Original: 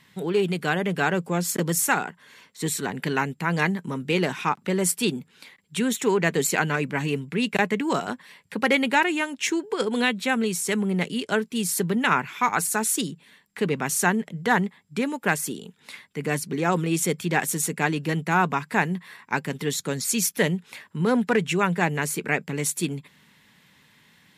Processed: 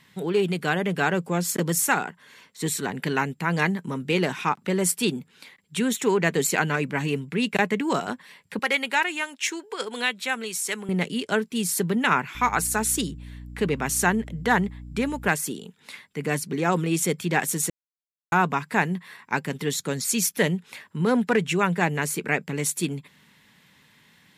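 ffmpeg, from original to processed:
ffmpeg -i in.wav -filter_complex "[0:a]asettb=1/sr,asplit=3[link_01][link_02][link_03];[link_01]atrim=end=8.594[link_04];[link_02]atrim=start=8.59:end=10.89,asetpts=PTS-STARTPTS,afade=type=in:duration=0.004:curve=qsin,afade=type=out:start_time=2.296:duration=0.004:curve=qsin,highpass=frequency=940:poles=1[link_05];[link_03]atrim=start=10.886[link_06];[link_04][link_05]acrossfade=duration=0.004:curve1=hsin:curve2=qsin[link_07];[link_07][link_06]acrossfade=duration=0.004:curve1=qsin:curve2=hsin,asettb=1/sr,asplit=3[link_08][link_09][link_10];[link_08]atrim=end=12.354[link_11];[link_09]atrim=start=12.35:end=15.29,asetpts=PTS-STARTPTS,afade=type=in:duration=0.004:curve=qsin,afade=type=out:start_time=2.936:duration=0.004:curve=qsin,aeval=exprs='val(0)+0.0126*(sin(2*PI*60*n/s)+sin(2*PI*2*60*n/s)/2+sin(2*PI*3*60*n/s)/3+sin(2*PI*4*60*n/s)/4+sin(2*PI*5*60*n/s)/5)':channel_layout=same[link_12];[link_10]atrim=start=15.286[link_13];[link_11][link_12]acrossfade=duration=0.004:curve1=hsin:curve2=qsin[link_14];[link_14][link_13]acrossfade=duration=0.004:curve1=qsin:curve2=hsin,asplit=3[link_15][link_16][link_17];[link_15]atrim=end=17.7,asetpts=PTS-STARTPTS,afade=type=out:start_time=17.696:duration=0.004:curve=hsin[link_18];[link_16]atrim=start=17.7:end=18.32,asetpts=PTS-STARTPTS,volume=0[link_19];[link_17]atrim=start=18.32,asetpts=PTS-STARTPTS,afade=type=in:duration=0.004:curve=hsin[link_20];[link_18][link_19][link_20]concat=n=3:v=0:a=1" out.wav

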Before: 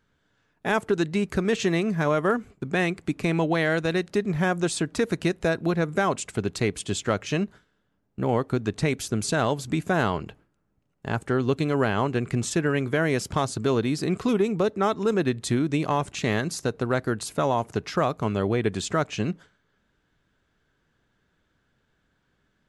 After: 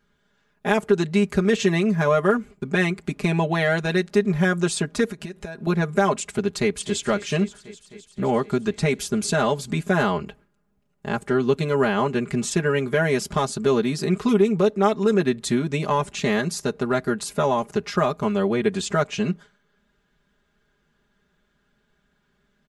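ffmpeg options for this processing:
ffmpeg -i in.wav -filter_complex "[0:a]asettb=1/sr,asplit=3[link_01][link_02][link_03];[link_01]atrim=end=5.054[link_04];[link_02]atrim=start=5.05:end=5.67,asetpts=PTS-STARTPTS,afade=type=in:duration=0.004:curve=qsin,afade=type=out:start_time=0.616:duration=0.004:curve=qsin,acompressor=threshold=-32dB:ratio=20:attack=3.2:release=140:knee=1:detection=peak[link_05];[link_03]atrim=start=5.666[link_06];[link_04][link_05]acrossfade=duration=0.004:curve1=hsin:curve2=qsin[link_07];[link_07][link_06]acrossfade=duration=0.004:curve1=qsin:curve2=hsin,asplit=2[link_08][link_09];[link_09]afade=type=in:start_time=6.52:duration=0.01,afade=type=out:start_time=7.02:duration=0.01,aecho=0:1:260|520|780|1040|1300|1560|1820|2080|2340|2600|2860|3120:0.158489|0.126791|0.101433|0.0811465|0.0649172|0.0519338|0.041547|0.0332376|0.0265901|0.0212721|0.0170177|0.0136141[link_10];[link_08][link_10]amix=inputs=2:normalize=0,aecho=1:1:4.9:0.91" out.wav

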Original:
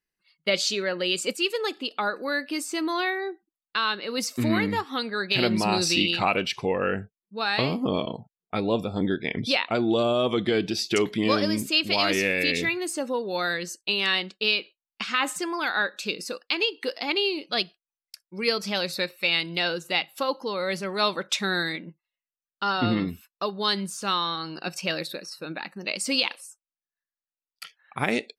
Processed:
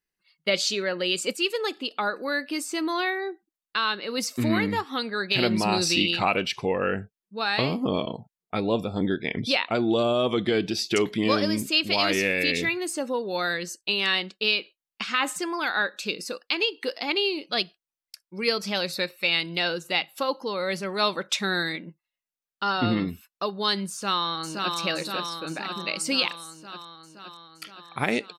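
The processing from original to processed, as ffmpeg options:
ffmpeg -i in.wav -filter_complex "[0:a]asplit=2[link_01][link_02];[link_02]afade=type=in:start_time=23.91:duration=0.01,afade=type=out:start_time=24.76:duration=0.01,aecho=0:1:520|1040|1560|2080|2600|3120|3640|4160|4680|5200|5720|6240:0.668344|0.467841|0.327489|0.229242|0.160469|0.112329|0.07863|0.055041|0.0385287|0.0269701|0.0188791|0.0132153[link_03];[link_01][link_03]amix=inputs=2:normalize=0" out.wav

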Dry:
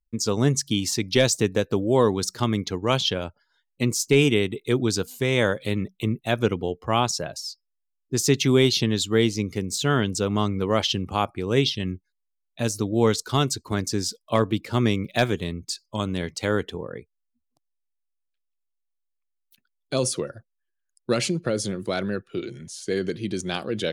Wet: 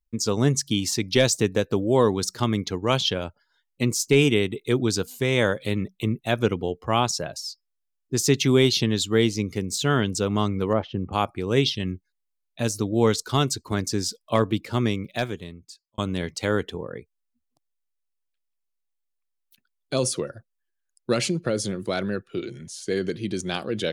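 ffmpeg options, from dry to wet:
ffmpeg -i in.wav -filter_complex "[0:a]asettb=1/sr,asplit=3[link_01][link_02][link_03];[link_01]atrim=end=10.734[link_04];[link_02]atrim=start=10.73:end=11.13,asetpts=PTS-STARTPTS,afade=type=in:duration=0.004:curve=qsin,afade=type=out:start_time=0.396:duration=0.004:curve=qsin,lowpass=1100[link_05];[link_03]atrim=start=11.126[link_06];[link_04][link_05]acrossfade=duration=0.004:curve1=hsin:curve2=qsin[link_07];[link_07][link_06]acrossfade=duration=0.004:curve1=qsin:curve2=hsin,asplit=2[link_08][link_09];[link_08]atrim=end=15.98,asetpts=PTS-STARTPTS,afade=type=out:start_time=14.55:duration=1.43[link_10];[link_09]atrim=start=15.98,asetpts=PTS-STARTPTS,afade=type=in:duration=0.004:curve=hsin[link_11];[link_10][link_11]concat=n=2:v=0:a=1" out.wav

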